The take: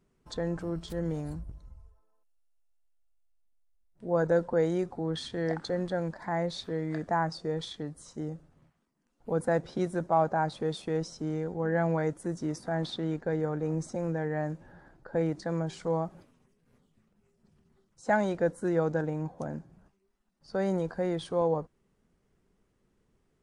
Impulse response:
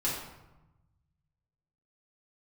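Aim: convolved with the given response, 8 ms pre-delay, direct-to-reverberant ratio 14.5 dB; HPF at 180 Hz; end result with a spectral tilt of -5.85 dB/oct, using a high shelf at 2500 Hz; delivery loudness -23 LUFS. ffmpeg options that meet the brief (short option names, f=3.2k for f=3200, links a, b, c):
-filter_complex "[0:a]highpass=180,highshelf=f=2.5k:g=-4,asplit=2[a][b];[1:a]atrim=start_sample=2205,adelay=8[c];[b][c]afir=irnorm=-1:irlink=0,volume=-21.5dB[d];[a][d]amix=inputs=2:normalize=0,volume=9dB"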